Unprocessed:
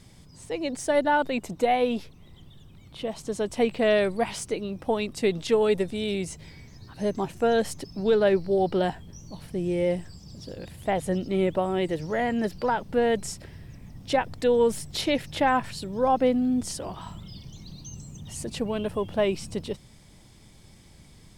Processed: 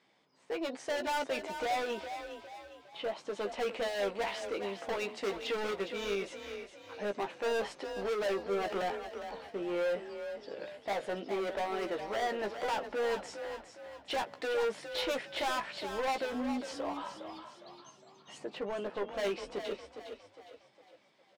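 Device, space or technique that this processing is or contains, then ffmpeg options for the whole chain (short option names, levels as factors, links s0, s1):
walkie-talkie: -filter_complex "[0:a]highpass=f=210:p=1,highpass=430,lowpass=2900,asoftclip=type=hard:threshold=0.0251,agate=range=0.398:threshold=0.00178:ratio=16:detection=peak,asettb=1/sr,asplit=3[s0][s1][s2];[s0]atrim=end=18.384[s3];[s1]atrim=start=18.38:end=19.15,asetpts=PTS-STARTPTS,afade=t=in:d=0.004:c=qsin,afade=t=out:st=0.766:d=0.004:c=qsin,highshelf=f=2600:g=-10[s4];[s2]atrim=start=19.146[s5];[s3][s4]acrossfade=d=0.004:c1=hsin:c2=qsin[s6];[s6][s5]acrossfade=d=0.004:c1=qsin:c2=hsin,asplit=2[s7][s8];[s8]adelay=15,volume=0.473[s9];[s7][s9]amix=inputs=2:normalize=0,asplit=6[s10][s11][s12][s13][s14][s15];[s11]adelay=409,afreqshift=33,volume=0.355[s16];[s12]adelay=818,afreqshift=66,volume=0.153[s17];[s13]adelay=1227,afreqshift=99,volume=0.0653[s18];[s14]adelay=1636,afreqshift=132,volume=0.0282[s19];[s15]adelay=2045,afreqshift=165,volume=0.0122[s20];[s10][s16][s17][s18][s19][s20]amix=inputs=6:normalize=0"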